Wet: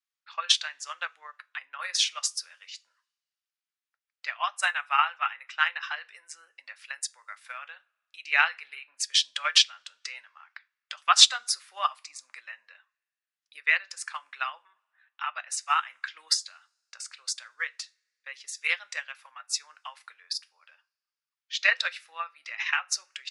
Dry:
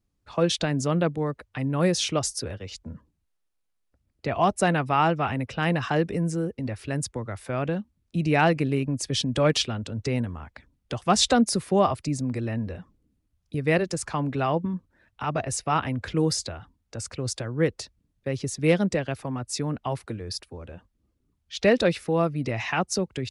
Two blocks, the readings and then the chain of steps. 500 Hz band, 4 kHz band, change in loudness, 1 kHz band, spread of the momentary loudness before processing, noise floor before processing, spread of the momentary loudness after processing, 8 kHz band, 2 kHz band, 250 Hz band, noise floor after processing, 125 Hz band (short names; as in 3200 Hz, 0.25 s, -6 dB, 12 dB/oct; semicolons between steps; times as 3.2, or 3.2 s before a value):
-24.0 dB, +5.5 dB, -1.0 dB, -3.5 dB, 13 LU, -75 dBFS, 21 LU, +1.5 dB, +4.0 dB, under -40 dB, under -85 dBFS, under -40 dB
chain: HPF 1300 Hz 24 dB/oct; spectral gate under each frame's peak -30 dB strong; high shelf 8500 Hz -11.5 dB; two-slope reverb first 0.26 s, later 1.6 s, from -27 dB, DRR 8 dB; transient shaper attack +6 dB, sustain -3 dB; upward expander 1.5:1, over -36 dBFS; gain +6.5 dB